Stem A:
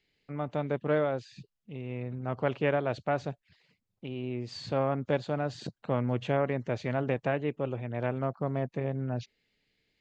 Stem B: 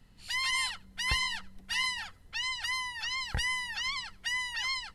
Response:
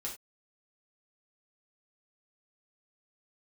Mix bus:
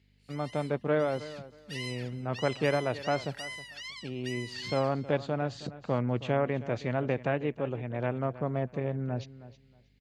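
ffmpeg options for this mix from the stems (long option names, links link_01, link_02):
-filter_complex "[0:a]aeval=exprs='val(0)+0.000794*(sin(2*PI*50*n/s)+sin(2*PI*2*50*n/s)/2+sin(2*PI*3*50*n/s)/3+sin(2*PI*4*50*n/s)/4+sin(2*PI*5*50*n/s)/5)':channel_layout=same,volume=0dB,asplit=2[link_01][link_02];[link_02]volume=-16dB[link_03];[1:a]highpass=1400,volume=-8dB,afade=type=in:start_time=1.21:duration=0.64:silence=0.237137,asplit=2[link_04][link_05];[link_05]volume=-22dB[link_06];[link_03][link_06]amix=inputs=2:normalize=0,aecho=0:1:317|634|951:1|0.21|0.0441[link_07];[link_01][link_04][link_07]amix=inputs=3:normalize=0,highpass=58"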